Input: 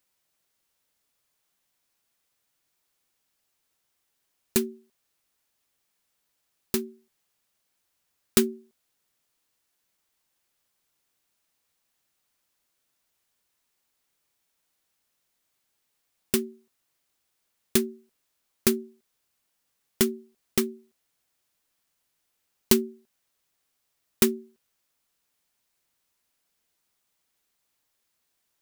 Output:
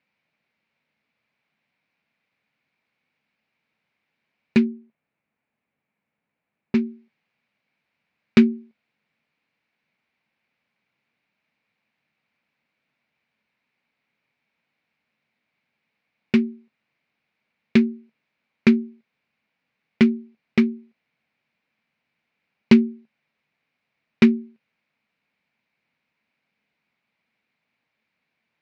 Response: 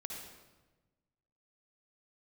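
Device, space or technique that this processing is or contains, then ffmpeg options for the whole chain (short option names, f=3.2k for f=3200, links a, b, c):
guitar cabinet: -filter_complex "[0:a]highpass=100,equalizer=f=150:t=q:w=4:g=6,equalizer=f=220:t=q:w=4:g=9,equalizer=f=370:t=q:w=4:g=-4,equalizer=f=1.2k:t=q:w=4:g=-3,equalizer=f=2.3k:t=q:w=4:g=9,equalizer=f=3.3k:t=q:w=4:g=-6,lowpass=f=3.6k:w=0.5412,lowpass=f=3.6k:w=1.3066,asettb=1/sr,asplit=3[a][b][c];[a]atrim=end=4.664[d];[b]atrim=start=4.66:end=6.75,asetpts=PTS-STARTPTS,afade=t=in:d=0.004:c=qsin,afade=t=out:st=2.086:d=0.004:c=qsin,lowpass=f=1.1k:p=1[e];[c]atrim=start=6.746[f];[d][e]acrossfade=d=0.004:c1=hsin:c2=qsin[g];[g][f]acrossfade=d=0.004:c1=qsin:c2=hsin,volume=4dB"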